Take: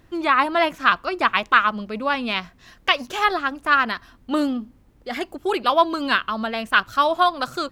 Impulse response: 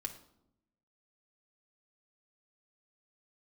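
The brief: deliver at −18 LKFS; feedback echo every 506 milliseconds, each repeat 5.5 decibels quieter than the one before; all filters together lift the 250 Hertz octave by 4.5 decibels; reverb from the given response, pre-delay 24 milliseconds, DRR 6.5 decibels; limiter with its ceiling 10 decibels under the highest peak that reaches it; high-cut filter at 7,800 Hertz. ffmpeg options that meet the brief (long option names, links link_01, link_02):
-filter_complex "[0:a]lowpass=7800,equalizer=frequency=250:width_type=o:gain=5.5,alimiter=limit=-12dB:level=0:latency=1,aecho=1:1:506|1012|1518|2024|2530|3036|3542:0.531|0.281|0.149|0.079|0.0419|0.0222|0.0118,asplit=2[link_01][link_02];[1:a]atrim=start_sample=2205,adelay=24[link_03];[link_02][link_03]afir=irnorm=-1:irlink=0,volume=-5dB[link_04];[link_01][link_04]amix=inputs=2:normalize=0,volume=3.5dB"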